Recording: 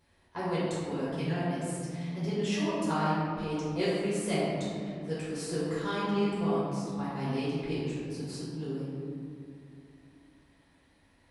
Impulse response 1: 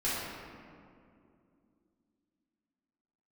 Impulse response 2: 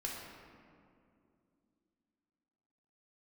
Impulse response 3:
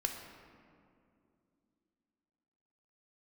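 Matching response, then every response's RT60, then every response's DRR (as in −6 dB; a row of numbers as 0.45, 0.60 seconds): 1; 2.5, 2.5, 2.5 seconds; −10.5, −3.0, 3.0 decibels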